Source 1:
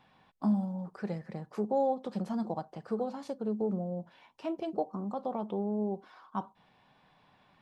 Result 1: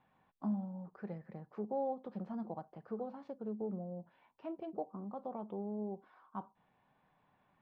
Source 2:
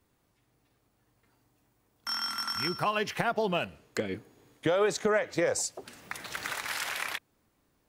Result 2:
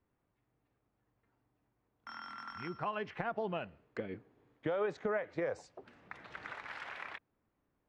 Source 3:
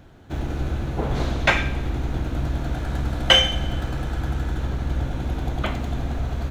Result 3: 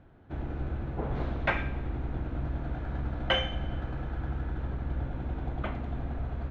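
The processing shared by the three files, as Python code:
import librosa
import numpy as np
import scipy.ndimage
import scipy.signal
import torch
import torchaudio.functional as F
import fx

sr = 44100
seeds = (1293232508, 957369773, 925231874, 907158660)

y = scipy.signal.sosfilt(scipy.signal.butter(2, 2100.0, 'lowpass', fs=sr, output='sos'), x)
y = y * librosa.db_to_amplitude(-8.0)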